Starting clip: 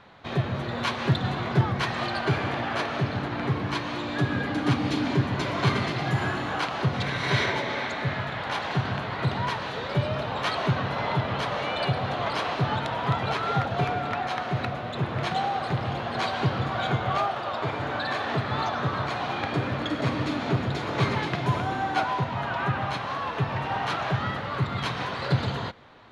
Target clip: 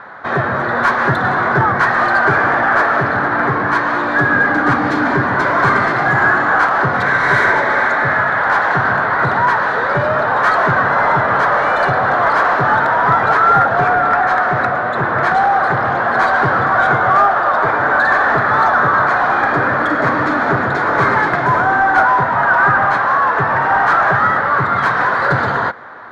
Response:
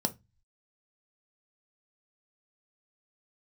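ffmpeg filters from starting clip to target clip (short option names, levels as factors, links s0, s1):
-filter_complex "[0:a]asplit=2[s0][s1];[s1]highpass=f=720:p=1,volume=8.91,asoftclip=type=tanh:threshold=0.335[s2];[s0][s2]amix=inputs=2:normalize=0,lowpass=f=4000:p=1,volume=0.501,highshelf=f=2100:t=q:w=3:g=-9,volume=1.68"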